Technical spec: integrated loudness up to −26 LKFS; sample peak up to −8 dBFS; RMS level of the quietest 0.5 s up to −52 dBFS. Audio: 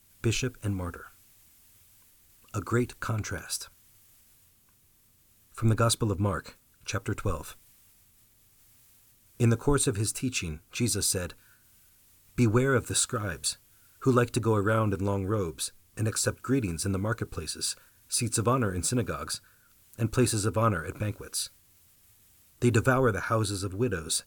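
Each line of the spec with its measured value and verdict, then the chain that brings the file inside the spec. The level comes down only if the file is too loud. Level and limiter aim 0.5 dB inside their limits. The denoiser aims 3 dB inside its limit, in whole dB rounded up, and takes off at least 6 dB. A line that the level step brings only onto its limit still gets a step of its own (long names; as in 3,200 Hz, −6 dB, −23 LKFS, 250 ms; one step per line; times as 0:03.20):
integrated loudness −28.5 LKFS: in spec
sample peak −10.5 dBFS: in spec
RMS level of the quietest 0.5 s −63 dBFS: in spec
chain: no processing needed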